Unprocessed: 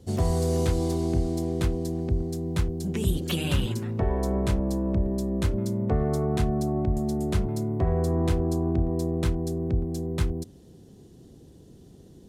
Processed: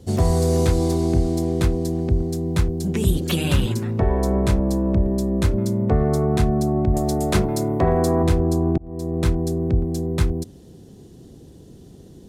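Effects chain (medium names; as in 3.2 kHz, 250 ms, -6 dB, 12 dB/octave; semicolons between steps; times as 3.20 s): 6.93–8.22 s: spectral peaks clipped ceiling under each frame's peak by 13 dB; dynamic bell 3 kHz, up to -4 dB, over -59 dBFS, Q 6.9; 8.78–9.28 s: fade in; trim +6 dB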